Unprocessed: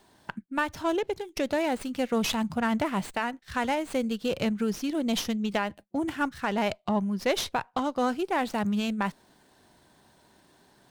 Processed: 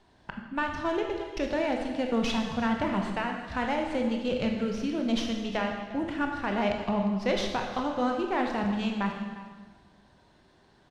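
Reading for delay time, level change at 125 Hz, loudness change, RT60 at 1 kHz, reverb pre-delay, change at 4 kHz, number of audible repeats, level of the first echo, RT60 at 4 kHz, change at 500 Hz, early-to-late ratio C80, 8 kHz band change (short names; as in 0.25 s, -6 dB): 0.353 s, +0.5 dB, -0.5 dB, 1.4 s, 19 ms, -2.0 dB, 1, -17.5 dB, 1.3 s, -0.5 dB, 5.5 dB, -8.0 dB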